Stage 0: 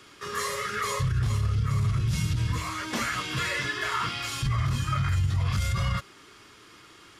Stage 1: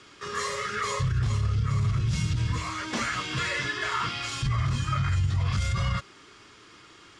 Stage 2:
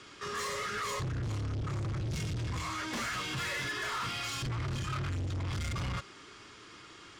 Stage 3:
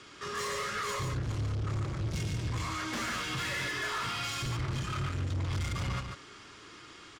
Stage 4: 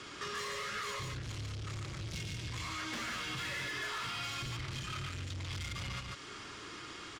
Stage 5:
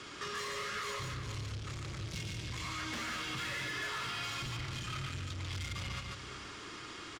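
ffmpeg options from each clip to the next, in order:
ffmpeg -i in.wav -af "lowpass=frequency=8400:width=0.5412,lowpass=frequency=8400:width=1.3066" out.wav
ffmpeg -i in.wav -af "asoftclip=type=tanh:threshold=-32.5dB" out.wav
ffmpeg -i in.wav -af "aecho=1:1:143:0.531" out.wav
ffmpeg -i in.wav -filter_complex "[0:a]acrossover=split=2100|4400[link_01][link_02][link_03];[link_01]acompressor=threshold=-47dB:ratio=4[link_04];[link_02]acompressor=threshold=-47dB:ratio=4[link_05];[link_03]acompressor=threshold=-56dB:ratio=4[link_06];[link_04][link_05][link_06]amix=inputs=3:normalize=0,volume=4dB" out.wav
ffmpeg -i in.wav -filter_complex "[0:a]asplit=2[link_01][link_02];[link_02]adelay=349.9,volume=-9dB,highshelf=frequency=4000:gain=-7.87[link_03];[link_01][link_03]amix=inputs=2:normalize=0" out.wav

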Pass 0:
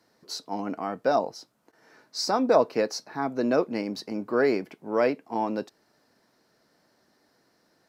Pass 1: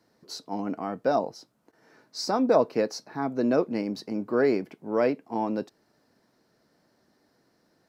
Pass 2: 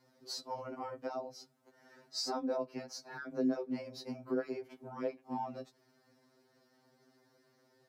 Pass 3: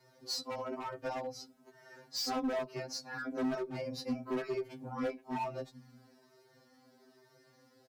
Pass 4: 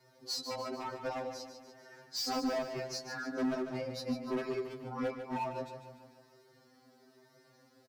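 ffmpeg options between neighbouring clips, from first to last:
ffmpeg -i in.wav -af "lowshelf=frequency=470:gain=6.5,volume=-3.5dB" out.wav
ffmpeg -i in.wav -af "acompressor=threshold=-33dB:ratio=5,afreqshift=19,afftfilt=real='re*2.45*eq(mod(b,6),0)':imag='im*2.45*eq(mod(b,6),0)':win_size=2048:overlap=0.75" out.wav
ffmpeg -i in.wav -filter_complex "[0:a]acrossover=split=180[link_01][link_02];[link_01]aecho=1:1:436:0.422[link_03];[link_02]asoftclip=type=hard:threshold=-38dB[link_04];[link_03][link_04]amix=inputs=2:normalize=0,asplit=2[link_05][link_06];[link_06]adelay=2.8,afreqshift=-1.1[link_07];[link_05][link_07]amix=inputs=2:normalize=1,volume=8dB" out.wav
ffmpeg -i in.wav -af "aecho=1:1:147|294|441|588|735|882:0.355|0.185|0.0959|0.0499|0.0259|0.0135" out.wav

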